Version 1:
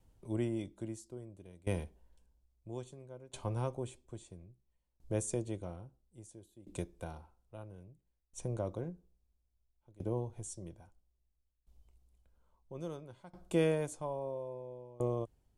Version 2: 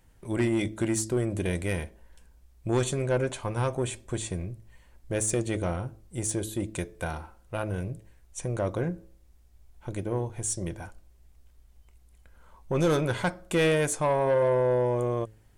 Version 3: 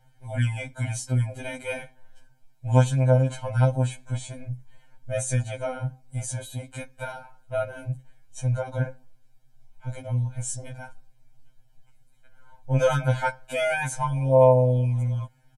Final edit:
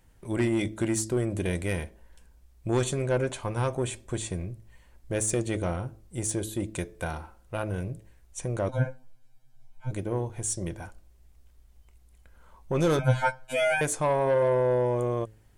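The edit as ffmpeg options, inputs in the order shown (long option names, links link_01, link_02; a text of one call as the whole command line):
ffmpeg -i take0.wav -i take1.wav -i take2.wav -filter_complex "[2:a]asplit=2[link_01][link_02];[1:a]asplit=3[link_03][link_04][link_05];[link_03]atrim=end=8.692[link_06];[link_01]atrim=start=8.688:end=9.912[link_07];[link_04]atrim=start=9.908:end=12.992[link_08];[link_02]atrim=start=12.988:end=13.812[link_09];[link_05]atrim=start=13.808[link_10];[link_06][link_07]acrossfade=duration=0.004:curve1=hsin:curve2=hsin[link_11];[link_11][link_08]acrossfade=duration=0.004:curve1=hsin:curve2=hsin[link_12];[link_12][link_09]acrossfade=duration=0.004:curve1=hsin:curve2=hsin[link_13];[link_13][link_10]acrossfade=duration=0.004:curve1=hsin:curve2=hsin" out.wav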